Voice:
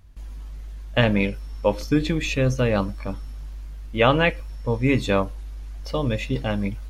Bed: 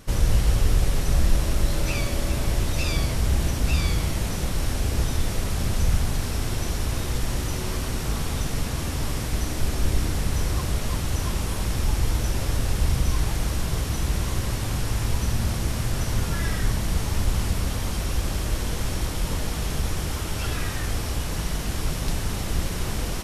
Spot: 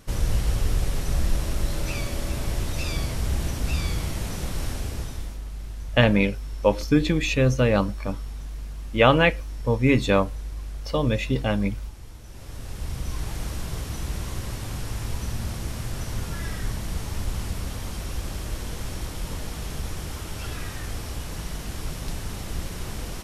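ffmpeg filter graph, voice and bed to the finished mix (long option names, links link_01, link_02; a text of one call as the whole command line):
ffmpeg -i stem1.wav -i stem2.wav -filter_complex "[0:a]adelay=5000,volume=1dB[link_01];[1:a]volume=10.5dB,afade=type=out:start_time=4.65:duration=0.76:silence=0.158489,afade=type=in:start_time=12.25:duration=1.16:silence=0.199526[link_02];[link_01][link_02]amix=inputs=2:normalize=0" out.wav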